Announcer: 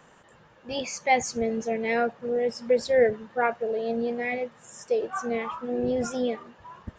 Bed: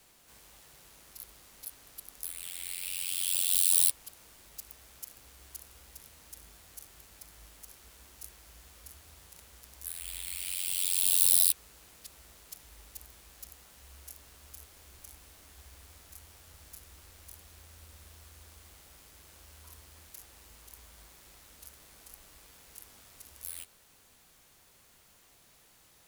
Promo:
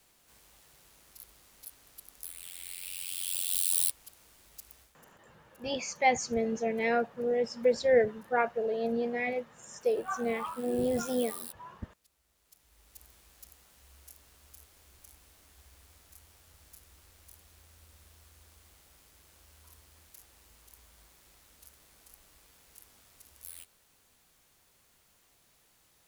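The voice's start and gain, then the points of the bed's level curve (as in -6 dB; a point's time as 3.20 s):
4.95 s, -3.0 dB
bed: 4.81 s -4 dB
5.04 s -20 dB
12.23 s -20 dB
13.04 s -5 dB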